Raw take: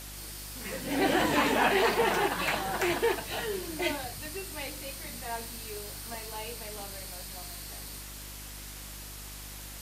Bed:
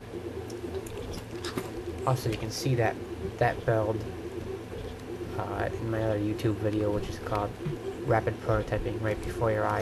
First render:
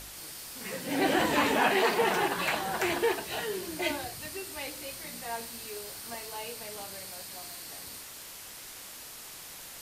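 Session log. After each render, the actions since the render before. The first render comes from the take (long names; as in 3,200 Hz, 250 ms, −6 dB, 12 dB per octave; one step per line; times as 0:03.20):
hum removal 50 Hz, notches 8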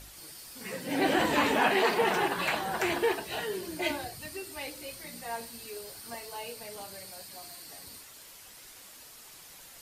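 broadband denoise 7 dB, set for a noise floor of −46 dBFS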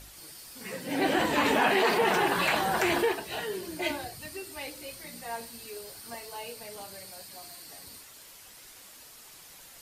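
0:01.45–0:03.05: envelope flattener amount 50%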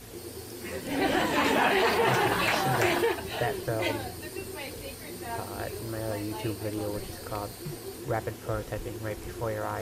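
mix in bed −5 dB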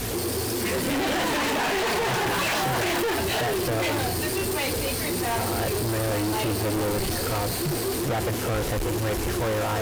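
brickwall limiter −22.5 dBFS, peak gain reduction 9 dB
leveller curve on the samples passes 5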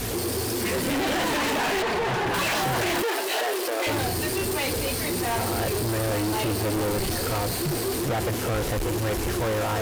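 0:01.82–0:02.34: low-pass filter 2,900 Hz 6 dB per octave
0:03.02–0:03.87: high-pass filter 360 Hz 24 dB per octave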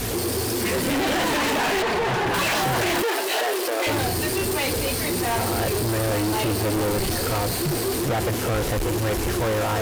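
level +2.5 dB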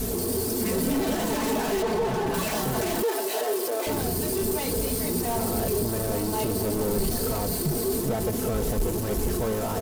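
parametric band 2,200 Hz −13 dB 2.8 octaves
comb filter 4.6 ms, depth 54%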